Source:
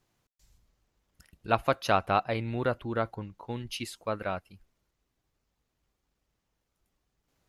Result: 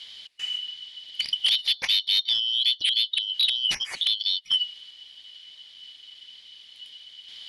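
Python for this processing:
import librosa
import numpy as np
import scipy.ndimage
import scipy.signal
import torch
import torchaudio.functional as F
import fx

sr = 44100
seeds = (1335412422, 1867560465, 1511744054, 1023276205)

p1 = fx.band_shuffle(x, sr, order='3412')
p2 = fx.gate_flip(p1, sr, shuts_db=-26.0, range_db=-25)
p3 = fx.fold_sine(p2, sr, drive_db=20, ceiling_db=-25.0)
p4 = p2 + (p3 * librosa.db_to_amplitude(-3.0))
p5 = scipy.signal.sosfilt(scipy.signal.ellip(4, 1.0, 40, 11000.0, 'lowpass', fs=sr, output='sos'), p4)
p6 = fx.band_shelf(p5, sr, hz=3000.0, db=13.5, octaves=1.7)
y = p6 * librosa.db_to_amplitude(-2.0)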